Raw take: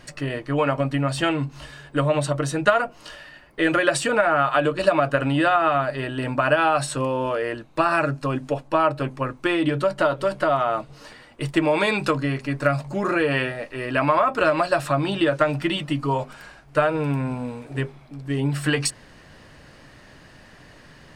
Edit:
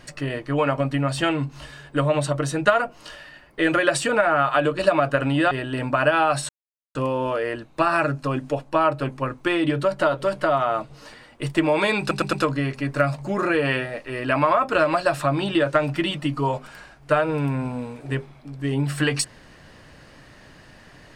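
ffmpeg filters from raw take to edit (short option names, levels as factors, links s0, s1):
-filter_complex "[0:a]asplit=6[s0][s1][s2][s3][s4][s5];[s0]atrim=end=5.512[s6];[s1]atrim=start=5.958:end=6.94,asetpts=PTS-STARTPTS,afade=t=out:st=0.978:d=0.004:c=hsin,apad=pad_dur=0.46[s7];[s2]atrim=start=6.94:end=12.102,asetpts=PTS-STARTPTS,afade=t=in:d=0.004:c=hsin[s8];[s3]atrim=start=11.988:end=12.102[s9];[s4]atrim=start=11.988:end=12.102[s10];[s5]atrim=start=11.988[s11];[s7][s8]concat=n=2:v=0:a=1[s12];[s6][s12]acrossfade=d=0.004:c1=hsin:c2=hsin[s13];[s13][s9]acrossfade=d=0.004:c1=hsin:c2=hsin[s14];[s14][s10]acrossfade=d=0.004:c1=hsin:c2=hsin[s15];[s15][s11]acrossfade=d=0.004:c1=hsin:c2=hsin"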